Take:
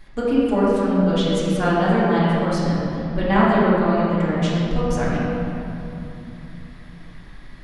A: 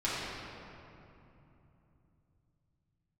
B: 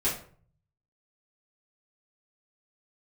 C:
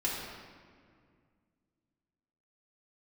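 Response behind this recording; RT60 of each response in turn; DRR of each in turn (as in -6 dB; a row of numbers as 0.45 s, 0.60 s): A; 3.0 s, 0.50 s, 2.1 s; -10.5 dB, -9.5 dB, -7.0 dB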